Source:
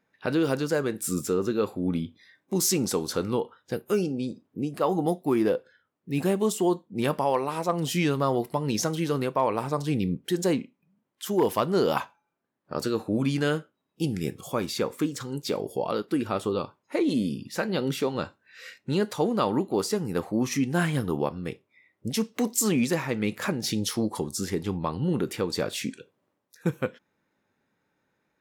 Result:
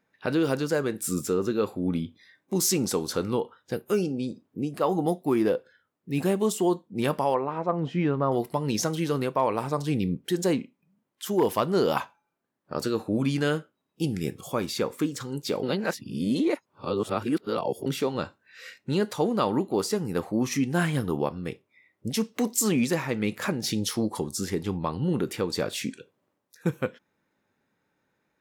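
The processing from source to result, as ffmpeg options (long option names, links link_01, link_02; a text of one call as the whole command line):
ffmpeg -i in.wav -filter_complex "[0:a]asettb=1/sr,asplit=3[link_01][link_02][link_03];[link_01]atrim=end=7.344[link_04];[link_02]atrim=start=7.34:end=8.32,asetpts=PTS-STARTPTS,afade=type=in:duration=0.004:curve=qsin,afade=type=out:start_time=0.976:duration=0.004:curve=qsin,lowpass=1600[link_05];[link_03]atrim=start=8.316[link_06];[link_04][link_05]acrossfade=duration=0.004:curve1=hsin:curve2=qsin[link_07];[link_07][link_06]acrossfade=duration=0.004:curve1=qsin:curve2=hsin,asplit=3[link_08][link_09][link_10];[link_08]atrim=end=15.632[link_11];[link_09]atrim=start=15.628:end=17.862,asetpts=PTS-STARTPTS,areverse[link_12];[link_10]atrim=start=17.858[link_13];[link_11][link_12]acrossfade=duration=0.004:curve1=hsin:curve2=hsin[link_14];[link_14][link_13]acrossfade=duration=0.004:curve1=hsin:curve2=hsin" out.wav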